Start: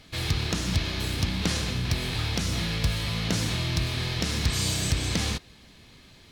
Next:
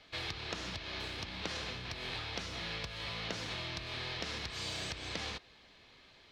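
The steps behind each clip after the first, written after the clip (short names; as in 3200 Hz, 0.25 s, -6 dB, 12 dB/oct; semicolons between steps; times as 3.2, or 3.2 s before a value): low shelf 280 Hz +11 dB; compressor, threshold -19 dBFS, peak gain reduction 9.5 dB; three-band isolator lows -21 dB, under 430 Hz, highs -19 dB, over 5400 Hz; gain -4.5 dB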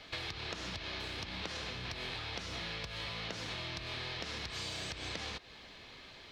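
compressor 5:1, threshold -46 dBFS, peak gain reduction 11.5 dB; gain +7.5 dB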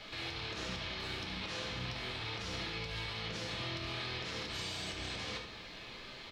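limiter -35 dBFS, peak gain reduction 11.5 dB; echo 72 ms -9.5 dB; on a send at -1 dB: reverb RT60 0.65 s, pre-delay 5 ms; on the sum: gain +1.5 dB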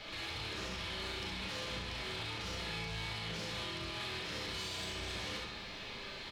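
limiter -32.5 dBFS, peak gain reduction 5 dB; soft clip -38.5 dBFS, distortion -15 dB; on a send: early reflections 37 ms -5 dB, 67 ms -4.5 dB; on the sum: gain +1.5 dB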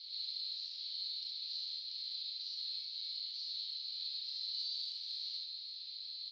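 Butterworth band-pass 4300 Hz, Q 5.6; gain +8.5 dB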